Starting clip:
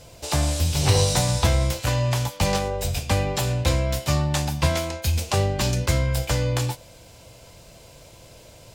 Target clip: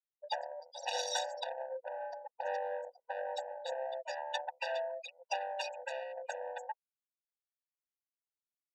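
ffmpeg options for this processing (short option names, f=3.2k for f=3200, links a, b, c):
-filter_complex "[0:a]asettb=1/sr,asplit=3[a][b][c];[a]atrim=end=1.434[d];[b]atrim=start=1.43:end=3.87,asetpts=PTS-STARTPTS,afade=t=in:d=0.004:c=qsin,afade=t=out:st=2.436:d=0.004:c=qsin,equalizer=f=400:t=o:w=0.67:g=5,equalizer=f=1k:t=o:w=0.67:g=-7,equalizer=f=2.5k:t=o:w=0.67:g=-11[e];[c]atrim=start=3.866[f];[d][e]acrossfade=d=0.004:c1=hsin:c2=qsin[g];[g][f]acrossfade=d=0.004:c1=qsin:c2=hsin,afftfilt=real='re*gte(hypot(re,im),0.1)':imag='im*gte(hypot(re,im),0.1)':win_size=1024:overlap=0.75,asoftclip=type=tanh:threshold=-25dB,lowpass=6k,equalizer=f=600:w=2:g=-8,afftfilt=real='re*eq(mod(floor(b*sr/1024/490),2),1)':imag='im*eq(mod(floor(b*sr/1024/490),2),1)':win_size=1024:overlap=0.75,volume=3.5dB"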